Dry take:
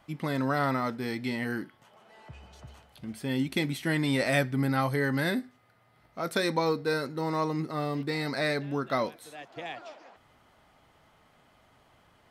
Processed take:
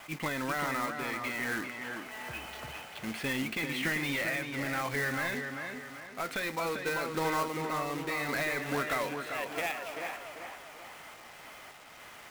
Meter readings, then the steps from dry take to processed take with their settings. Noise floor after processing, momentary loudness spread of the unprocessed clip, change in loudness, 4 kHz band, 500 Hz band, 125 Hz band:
−50 dBFS, 15 LU, −4.0 dB, −2.0 dB, −5.0 dB, −9.5 dB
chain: parametric band 2,400 Hz +11.5 dB 1.2 octaves
downward compressor 10 to 1, threshold −32 dBFS, peak gain reduction 17.5 dB
sample-and-hold tremolo
tape wow and flutter 21 cents
mid-hump overdrive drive 15 dB, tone 1,500 Hz, clips at −22 dBFS
log-companded quantiser 4 bits
on a send: tape delay 393 ms, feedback 46%, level −4 dB, low-pass 2,700 Hz
on the sum: level that may rise only so fast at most 290 dB per second
level +2 dB

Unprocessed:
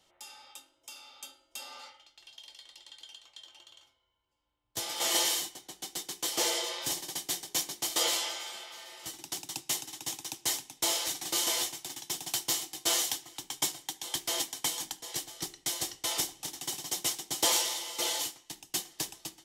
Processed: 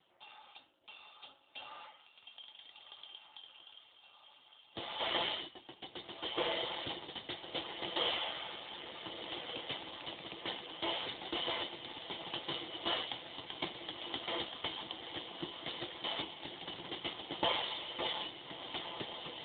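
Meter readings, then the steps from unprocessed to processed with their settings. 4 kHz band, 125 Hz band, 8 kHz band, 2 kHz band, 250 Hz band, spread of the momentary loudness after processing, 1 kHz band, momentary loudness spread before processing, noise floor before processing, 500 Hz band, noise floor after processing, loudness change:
−4.5 dB, −1.5 dB, below −40 dB, −3.0 dB, −1.5 dB, 19 LU, −2.0 dB, 21 LU, −72 dBFS, −1.0 dB, −64 dBFS, −8.0 dB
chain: feedback delay with all-pass diffusion 1,427 ms, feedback 72%, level −9 dB
level +1 dB
AMR narrowband 7.4 kbit/s 8,000 Hz

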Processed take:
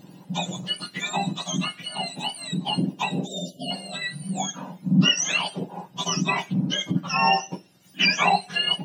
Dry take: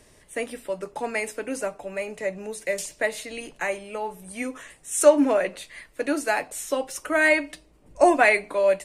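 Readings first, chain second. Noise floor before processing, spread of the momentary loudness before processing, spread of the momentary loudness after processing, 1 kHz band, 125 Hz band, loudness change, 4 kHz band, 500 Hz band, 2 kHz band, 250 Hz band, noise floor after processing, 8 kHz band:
−56 dBFS, 15 LU, 13 LU, +2.0 dB, can't be measured, −0.5 dB, +16.5 dB, −14.0 dB, −2.0 dB, +2.0 dB, −52 dBFS, +1.5 dB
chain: frequency axis turned over on the octave scale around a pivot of 1,300 Hz
in parallel at +2 dB: downward compressor, threshold −30 dBFS, peak gain reduction 17 dB
on the sum: time-frequency box erased 0:03.26–0:03.71, 730–2,800 Hz
notch comb filter 220 Hz

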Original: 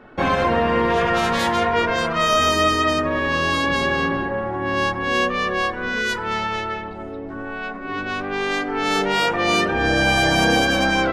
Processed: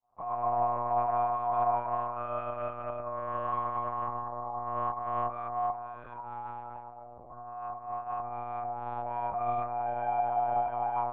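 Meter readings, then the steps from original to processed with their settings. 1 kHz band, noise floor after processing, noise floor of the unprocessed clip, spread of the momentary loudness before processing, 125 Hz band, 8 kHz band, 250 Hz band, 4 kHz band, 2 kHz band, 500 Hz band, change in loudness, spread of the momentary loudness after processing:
−7.5 dB, −47 dBFS, −32 dBFS, 11 LU, −16.5 dB, below −40 dB, −24.5 dB, below −40 dB, −30.5 dB, −13.5 dB, −13.0 dB, 13 LU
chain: fade in at the beginning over 0.59 s
formant resonators in series a
one-pitch LPC vocoder at 8 kHz 120 Hz

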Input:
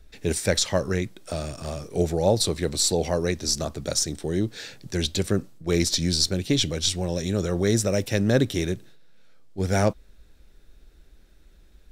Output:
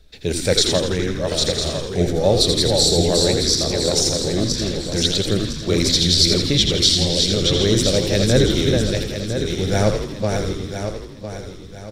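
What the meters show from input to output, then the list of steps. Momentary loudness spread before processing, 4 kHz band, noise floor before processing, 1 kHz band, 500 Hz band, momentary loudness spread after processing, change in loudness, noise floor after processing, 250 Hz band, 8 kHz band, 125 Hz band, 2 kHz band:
10 LU, +11.0 dB, −53 dBFS, +4.0 dB, +6.5 dB, 11 LU, +7.0 dB, −36 dBFS, +5.5 dB, +5.5 dB, +6.0 dB, +4.5 dB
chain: feedback delay that plays each chunk backwards 503 ms, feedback 57%, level −3.5 dB
graphic EQ with 10 bands 125 Hz +5 dB, 500 Hz +5 dB, 4,000 Hz +10 dB
echo with shifted repeats 83 ms, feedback 59%, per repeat −82 Hz, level −6 dB
level −1 dB

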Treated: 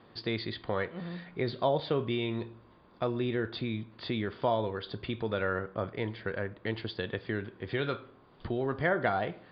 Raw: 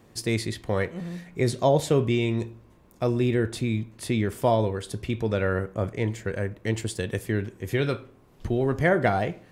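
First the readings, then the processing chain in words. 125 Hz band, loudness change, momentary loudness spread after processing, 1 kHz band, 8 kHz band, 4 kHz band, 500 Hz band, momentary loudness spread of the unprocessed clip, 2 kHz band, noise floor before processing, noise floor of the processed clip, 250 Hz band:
−10.5 dB, −7.0 dB, 8 LU, −4.5 dB, below −40 dB, −2.5 dB, −6.5 dB, 9 LU, −4.0 dB, −56 dBFS, −59 dBFS, −7.5 dB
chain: low-shelf EQ 98 Hz −9.5 dB
downward compressor 1.5 to 1, threshold −35 dBFS, peak gain reduction 7 dB
Chebyshev low-pass with heavy ripple 4,800 Hz, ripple 6 dB
level +4 dB

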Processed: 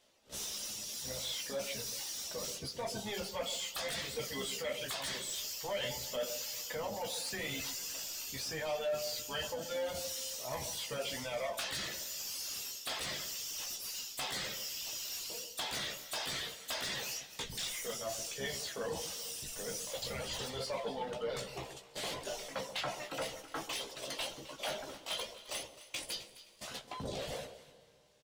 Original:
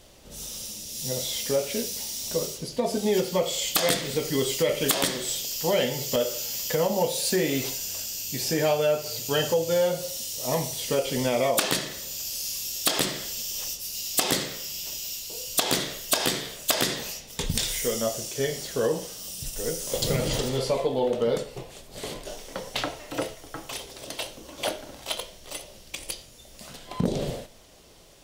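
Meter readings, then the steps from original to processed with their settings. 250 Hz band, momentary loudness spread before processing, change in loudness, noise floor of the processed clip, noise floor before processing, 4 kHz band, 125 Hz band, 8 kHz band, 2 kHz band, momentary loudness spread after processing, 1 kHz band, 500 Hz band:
−17.5 dB, 13 LU, −11.5 dB, −57 dBFS, −49 dBFS, −8.5 dB, −16.0 dB, −10.0 dB, −8.0 dB, 5 LU, −10.0 dB, −14.0 dB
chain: sub-octave generator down 1 octave, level 0 dB
mains-hum notches 60/120/180/240/300/360/420 Hz
noise gate −42 dBFS, range −18 dB
dynamic equaliser 340 Hz, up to −8 dB, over −40 dBFS, Q 1.3
reversed playback
downward compressor 6 to 1, threshold −32 dBFS, peak gain reduction 13.5 dB
reversed playback
mid-hump overdrive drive 20 dB, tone 5,200 Hz, clips at −19 dBFS
reverb reduction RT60 1.2 s
double-tracking delay 15 ms −6.5 dB
on a send: delay that swaps between a low-pass and a high-pass 131 ms, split 980 Hz, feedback 51%, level −10 dB
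on the sum: four-comb reverb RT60 3.2 s, combs from 25 ms, DRR 17 dB
level −9 dB

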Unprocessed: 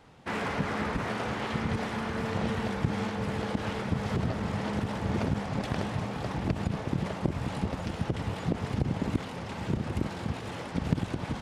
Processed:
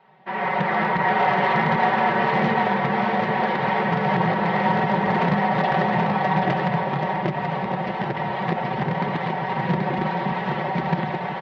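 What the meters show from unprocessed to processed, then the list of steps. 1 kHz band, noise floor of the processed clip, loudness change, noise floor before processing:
+16.5 dB, −29 dBFS, +10.0 dB, −39 dBFS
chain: parametric band 710 Hz +9.5 dB 0.41 octaves
comb filter 5.3 ms, depth 95%
automatic gain control gain up to 11.5 dB
in parallel at −5 dB: wrap-around overflow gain 8 dB
on the sum: flanger 0.19 Hz, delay 4.5 ms, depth 4.8 ms, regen −47%
loudspeaker in its box 140–3,900 Hz, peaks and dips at 160 Hz +4 dB, 230 Hz −4 dB, 480 Hz +5 dB, 940 Hz +10 dB, 1,900 Hz +10 dB
on a send: single-tap delay 780 ms −4 dB
on the sum: level −7 dB

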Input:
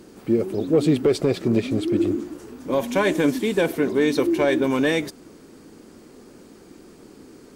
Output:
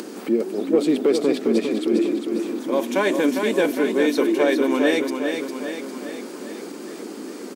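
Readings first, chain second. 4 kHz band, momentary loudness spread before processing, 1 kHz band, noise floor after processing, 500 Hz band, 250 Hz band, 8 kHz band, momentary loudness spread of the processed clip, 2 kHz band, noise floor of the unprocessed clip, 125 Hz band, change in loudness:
+1.5 dB, 6 LU, +1.5 dB, −36 dBFS, +1.5 dB, +1.0 dB, +2.5 dB, 15 LU, +1.5 dB, −48 dBFS, −12.0 dB, +0.5 dB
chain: Butterworth high-pass 210 Hz 36 dB per octave
upward compression, threshold −24 dBFS
on a send: repeating echo 404 ms, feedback 56%, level −6 dB

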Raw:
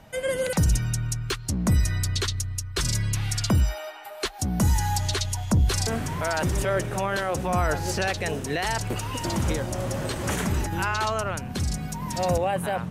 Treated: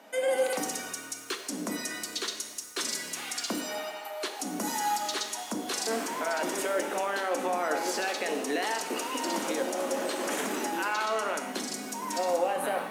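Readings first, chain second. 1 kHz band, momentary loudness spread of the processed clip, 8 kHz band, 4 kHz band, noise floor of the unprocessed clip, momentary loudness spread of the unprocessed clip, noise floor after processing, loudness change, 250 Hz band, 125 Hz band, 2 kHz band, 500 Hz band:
−1.5 dB, 6 LU, −2.5 dB, −2.5 dB, −37 dBFS, 6 LU, −42 dBFS, −5.0 dB, −6.0 dB, −29.0 dB, −2.5 dB, −1.5 dB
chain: elliptic high-pass filter 250 Hz, stop band 80 dB
brickwall limiter −22 dBFS, peak gain reduction 7.5 dB
reverb with rising layers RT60 1 s, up +7 semitones, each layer −8 dB, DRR 5 dB

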